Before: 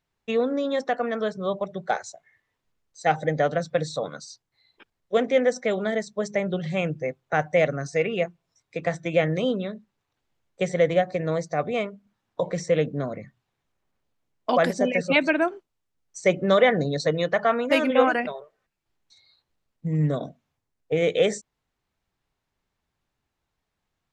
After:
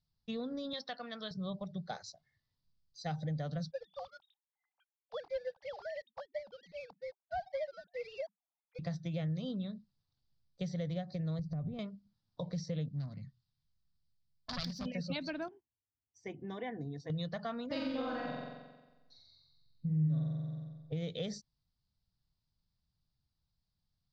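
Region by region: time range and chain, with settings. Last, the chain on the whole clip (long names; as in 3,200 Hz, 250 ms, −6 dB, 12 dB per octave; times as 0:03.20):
0:00.73–0:01.31: low-pass filter 4,400 Hz 24 dB per octave + spectral tilt +4 dB per octave
0:03.71–0:08.79: three sine waves on the formant tracks + high-pass with resonance 820 Hz, resonance Q 3.6 + leveller curve on the samples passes 1
0:11.39–0:11.79: spectral tilt −4.5 dB per octave + downward compressor 4 to 1, threshold −28 dBFS
0:12.88–0:14.86: phase distortion by the signal itself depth 0.39 ms + parametric band 470 Hz −12 dB 1.6 octaves
0:15.48–0:17.10: high-pass filter 94 Hz + high-shelf EQ 2,700 Hz −10.5 dB + phaser with its sweep stopped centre 860 Hz, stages 8
0:17.66–0:20.93: high-shelf EQ 4,400 Hz −10 dB + flutter between parallel walls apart 7.7 metres, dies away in 1.2 s
whole clip: drawn EQ curve 160 Hz 0 dB, 390 Hz −19 dB, 560 Hz −16 dB, 1,200 Hz −16 dB, 2,400 Hz −20 dB, 4,800 Hz +3 dB, 8,000 Hz −27 dB; downward compressor 2.5 to 1, threshold −36 dBFS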